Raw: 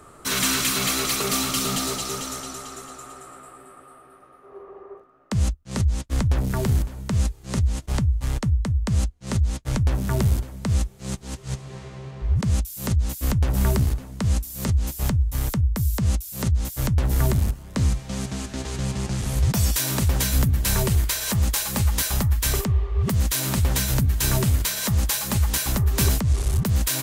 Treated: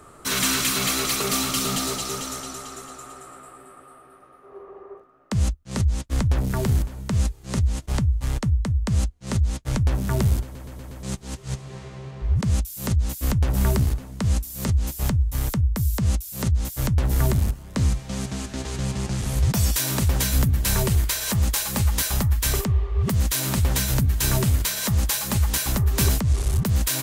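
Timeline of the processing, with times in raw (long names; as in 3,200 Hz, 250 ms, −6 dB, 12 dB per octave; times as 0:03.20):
0:10.43: stutter in place 0.12 s, 5 plays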